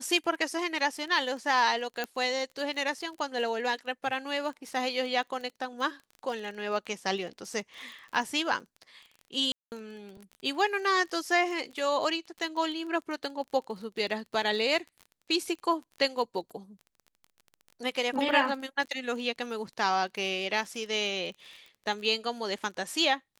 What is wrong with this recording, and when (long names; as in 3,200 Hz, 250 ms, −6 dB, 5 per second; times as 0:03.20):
surface crackle 26 per second −38 dBFS
0:02.04: click −17 dBFS
0:09.52–0:09.72: drop-out 199 ms